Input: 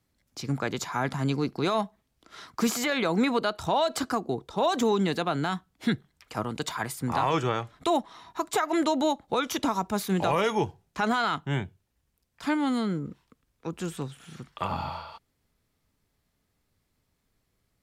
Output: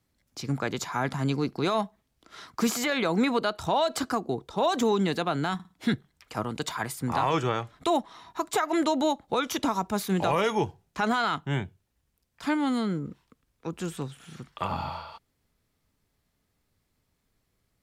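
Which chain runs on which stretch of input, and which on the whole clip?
5.54–5.94 HPF 41 Hz + flutter echo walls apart 9.3 m, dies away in 0.32 s
whole clip: dry

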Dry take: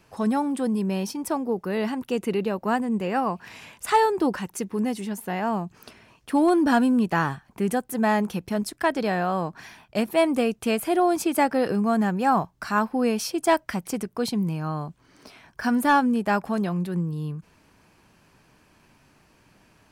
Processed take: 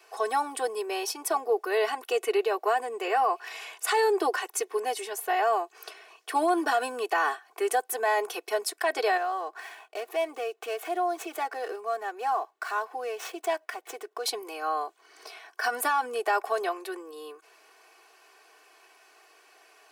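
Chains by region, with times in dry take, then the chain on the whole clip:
9.17–14.26 median filter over 9 samples + compressor 2:1, threshold -36 dBFS
whole clip: steep high-pass 430 Hz 36 dB/oct; comb 2.7 ms, depth 91%; limiter -18 dBFS; gain +1.5 dB

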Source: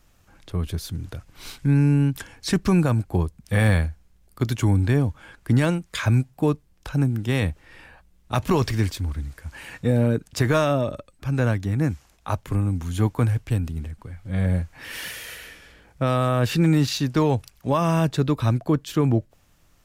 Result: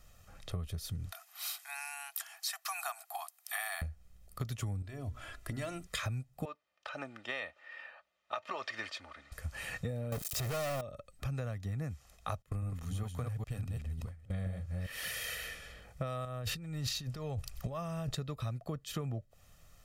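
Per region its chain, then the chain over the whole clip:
1.12–3.82 Chebyshev high-pass 660 Hz, order 10 + bell 13000 Hz +14 dB 0.62 oct
4.82–5.87 comb 3 ms, depth 69% + compressor 4:1, threshold -29 dBFS + notches 60/120/180/240/300/360/420/480 Hz
6.45–9.32 BPF 710–2900 Hz + comb 3.3 ms, depth 48%
10.12–10.81 switching spikes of -25.5 dBFS + sample leveller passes 5
12.42–14.94 reverse delay 0.204 s, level -2.5 dB + gate with hold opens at -23 dBFS, closes at -31 dBFS
16.25–18.15 low shelf 73 Hz +11.5 dB + negative-ratio compressor -27 dBFS
whole clip: bell 12000 Hz +2.5 dB 2.3 oct; comb 1.6 ms, depth 59%; compressor 12:1, threshold -31 dBFS; gain -3.5 dB

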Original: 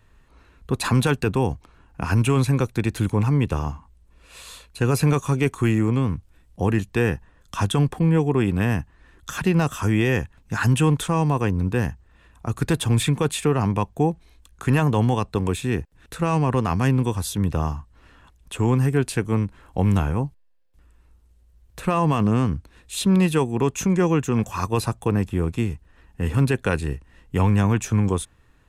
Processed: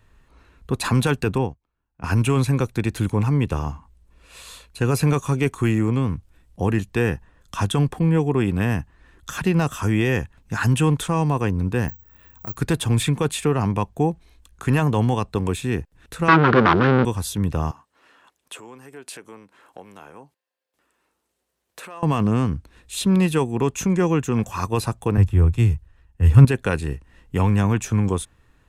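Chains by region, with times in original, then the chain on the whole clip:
1.38–2.04 air absorption 99 m + upward expander 2.5:1, over -36 dBFS
11.88–12.57 compressor 2:1, threshold -37 dBFS + careless resampling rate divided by 2×, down filtered, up zero stuff
16.28–17.05 formant sharpening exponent 1.5 + sample leveller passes 5 + speaker cabinet 200–4100 Hz, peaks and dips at 340 Hz +10 dB, 710 Hz -3 dB, 1400 Hz +9 dB
17.71–22.03 compressor, threshold -31 dBFS + HPF 390 Hz
25.17–26.45 resonant low shelf 150 Hz +9 dB, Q 1.5 + three-band expander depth 70%
whole clip: dry

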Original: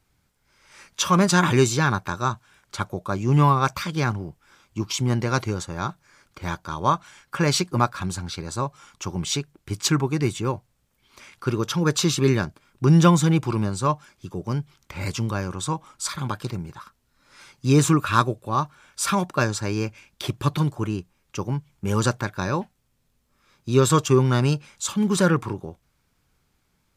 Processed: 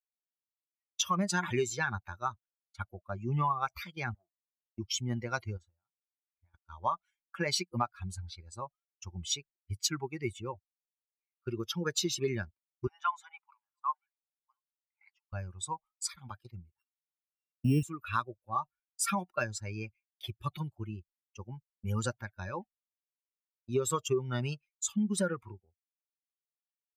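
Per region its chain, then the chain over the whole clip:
4.14–4.78 HPF 450 Hz 6 dB/oct + core saturation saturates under 670 Hz
5.57–6.54 high shelf 5500 Hz -10 dB + doubler 26 ms -11 dB + compressor 2.5:1, threshold -38 dBFS
12.87–15.33 steep high-pass 850 Hz + tilt -4 dB/oct + echo 0.689 s -20 dB
16.78–17.83 sample sorter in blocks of 16 samples + bell 200 Hz +12.5 dB 2.2 oct
whole clip: per-bin expansion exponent 2; expander -45 dBFS; compressor 5:1, threshold -27 dBFS

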